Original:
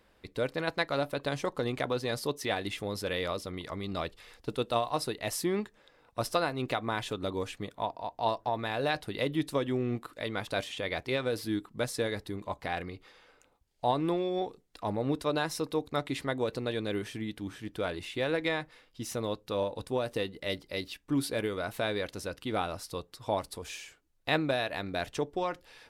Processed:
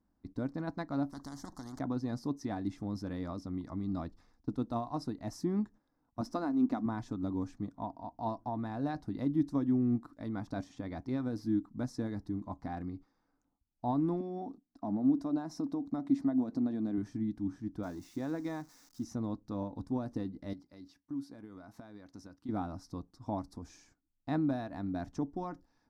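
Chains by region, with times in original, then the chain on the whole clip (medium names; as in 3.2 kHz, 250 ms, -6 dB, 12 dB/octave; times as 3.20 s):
1.12–1.79 s: Butterworth band-stop 2.5 kHz, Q 0.99 + spectrum-flattening compressor 4:1
6.21–6.86 s: resonant low shelf 180 Hz -6.5 dB, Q 3 + hysteresis with a dead band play -49 dBFS
14.20–16.98 s: bass shelf 130 Hz -11.5 dB + compression 2.5:1, threshold -34 dBFS + small resonant body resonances 250/650 Hz, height 9 dB, ringing for 25 ms
17.83–19.04 s: zero-crossing glitches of -33 dBFS + de-esser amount 60% + bass shelf 110 Hz -10 dB
20.53–22.49 s: high-pass 58 Hz + bass shelf 410 Hz -8 dB + compression 3:1, threshold -42 dBFS
whole clip: peaking EQ 560 Hz -13.5 dB 0.9 oct; gate -52 dBFS, range -9 dB; FFT filter 150 Hz 0 dB, 280 Hz +9 dB, 410 Hz -6 dB, 660 Hz +3 dB, 1.7 kHz -14 dB, 2.9 kHz -28 dB, 5.7 kHz -9 dB, 9.3 kHz -23 dB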